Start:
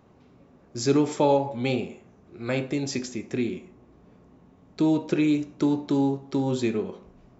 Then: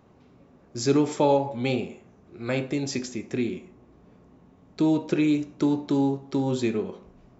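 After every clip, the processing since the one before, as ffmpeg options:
-af anull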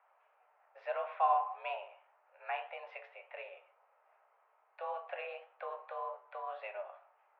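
-af "highpass=f=530:t=q:w=0.5412,highpass=f=530:t=q:w=1.307,lowpass=f=2400:t=q:w=0.5176,lowpass=f=2400:t=q:w=0.7071,lowpass=f=2400:t=q:w=1.932,afreqshift=190,flanger=delay=9.9:depth=6.4:regen=64:speed=1.8:shape=triangular,volume=0.794"

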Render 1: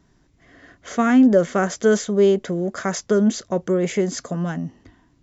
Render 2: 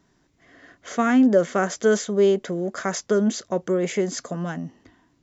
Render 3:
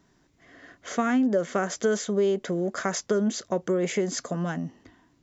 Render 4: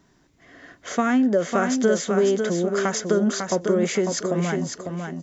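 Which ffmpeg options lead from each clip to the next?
-af "lowshelf=f=120:g=-11.5,volume=0.891"
-af "acompressor=threshold=0.0794:ratio=3"
-af "aecho=1:1:550|1100|1650:0.531|0.117|0.0257,volume=1.5"

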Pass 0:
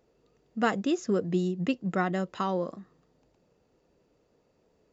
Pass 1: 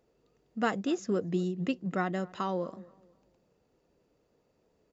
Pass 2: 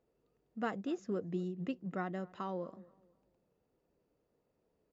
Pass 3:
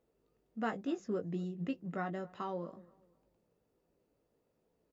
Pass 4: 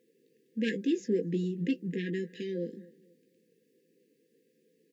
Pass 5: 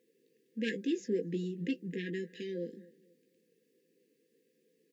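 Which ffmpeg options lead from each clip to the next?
-filter_complex "[0:a]asplit=2[s0][s1];[s1]adelay=242,lowpass=f=1500:p=1,volume=0.0891,asplit=2[s2][s3];[s3]adelay=242,lowpass=f=1500:p=1,volume=0.34,asplit=2[s4][s5];[s5]adelay=242,lowpass=f=1500:p=1,volume=0.34[s6];[s0][s2][s4][s6]amix=inputs=4:normalize=0,volume=0.708"
-af "highshelf=f=3500:g=-10,volume=0.447"
-filter_complex "[0:a]asplit=2[s0][s1];[s1]adelay=18,volume=0.447[s2];[s0][s2]amix=inputs=2:normalize=0"
-af "aeval=exprs='0.0841*sin(PI/2*2*val(0)/0.0841)':c=same,afftfilt=real='re*(1-between(b*sr/4096,530,1600))':imag='im*(1-between(b*sr/4096,530,1600))':win_size=4096:overlap=0.75,highpass=f=180:w=0.5412,highpass=f=180:w=1.3066"
-af "lowshelf=f=280:g=-5.5,volume=0.841"

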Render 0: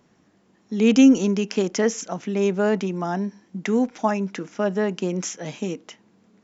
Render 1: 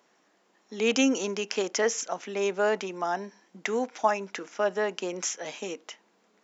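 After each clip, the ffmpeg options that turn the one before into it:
-af "highpass=510"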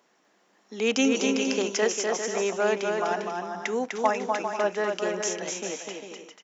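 -af "aecho=1:1:250|400|490|544|576.4:0.631|0.398|0.251|0.158|0.1"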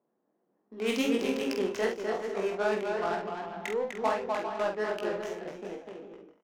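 -filter_complex "[0:a]adynamicsmooth=sensitivity=3:basefreq=540,flanger=delay=17.5:depth=5.6:speed=2.6,asplit=2[s0][s1];[s1]adelay=47,volume=0.531[s2];[s0][s2]amix=inputs=2:normalize=0,volume=0.794"

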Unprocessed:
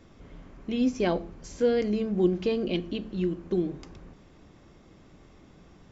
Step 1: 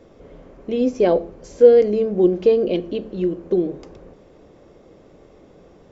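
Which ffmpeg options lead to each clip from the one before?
-af "equalizer=f=500:t=o:w=1.1:g=14.5"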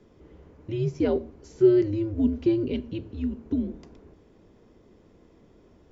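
-af "afreqshift=-110,volume=0.422"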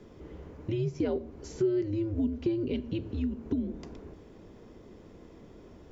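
-af "acompressor=threshold=0.0178:ratio=3,volume=1.78"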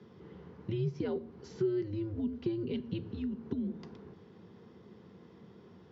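-af "highpass=f=100:w=0.5412,highpass=f=100:w=1.3066,equalizer=f=190:t=q:w=4:g=5,equalizer=f=290:t=q:w=4:g=-9,equalizer=f=610:t=q:w=4:g=-10,equalizer=f=2400:t=q:w=4:g=-5,lowpass=f=5000:w=0.5412,lowpass=f=5000:w=1.3066,volume=0.841"

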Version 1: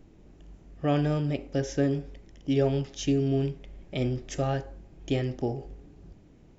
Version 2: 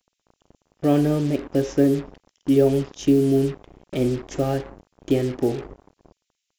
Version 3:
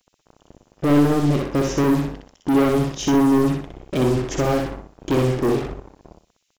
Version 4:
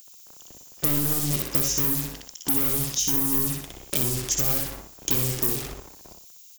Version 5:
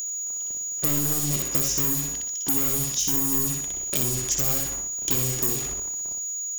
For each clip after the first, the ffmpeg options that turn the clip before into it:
-filter_complex "[0:a]equalizer=f=340:t=o:w=1.6:g=10,acrossover=split=3000[s0][s1];[s0]acrusher=bits=5:mix=0:aa=0.5[s2];[s2][s1]amix=inputs=2:normalize=0"
-filter_complex "[0:a]asoftclip=type=tanh:threshold=0.075,asplit=2[s0][s1];[s1]aecho=0:1:62|124|186|248:0.668|0.194|0.0562|0.0163[s2];[s0][s2]amix=inputs=2:normalize=0,volume=2.24"
-filter_complex "[0:a]crystalizer=i=8.5:c=0,acrossover=split=180[s0][s1];[s1]acompressor=threshold=0.0631:ratio=6[s2];[s0][s2]amix=inputs=2:normalize=0,aemphasis=mode=production:type=50fm,volume=0.501"
-af "aeval=exprs='val(0)+0.0447*sin(2*PI*6800*n/s)':c=same,volume=0.891"

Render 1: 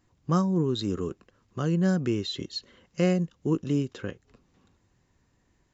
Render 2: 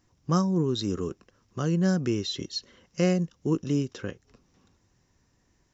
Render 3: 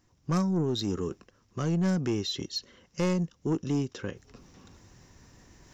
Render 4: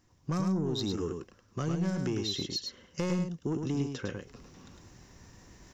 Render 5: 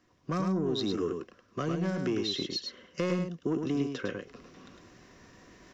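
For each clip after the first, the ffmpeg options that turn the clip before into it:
-af "equalizer=f=5600:t=o:w=0.29:g=10.5"
-af "areverse,acompressor=mode=upward:threshold=0.00794:ratio=2.5,areverse,asoftclip=type=tanh:threshold=0.0944"
-af "acompressor=threshold=0.0355:ratio=6,aecho=1:1:105:0.562"
-filter_complex "[0:a]asuperstop=centerf=860:order=4:qfactor=6,acrossover=split=200 4400:gain=0.251 1 0.251[s0][s1][s2];[s0][s1][s2]amix=inputs=3:normalize=0,volume=1.58"

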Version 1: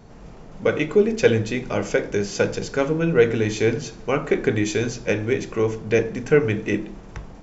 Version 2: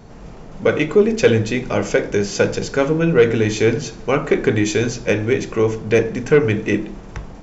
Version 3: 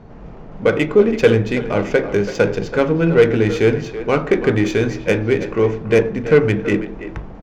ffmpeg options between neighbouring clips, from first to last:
-af "acontrast=46,volume=0.891"
-filter_complex "[0:a]asplit=2[s0][s1];[s1]adelay=330,highpass=300,lowpass=3400,asoftclip=type=hard:threshold=0.282,volume=0.316[s2];[s0][s2]amix=inputs=2:normalize=0,adynamicsmooth=sensitivity=1:basefreq=2700,volume=1.12"

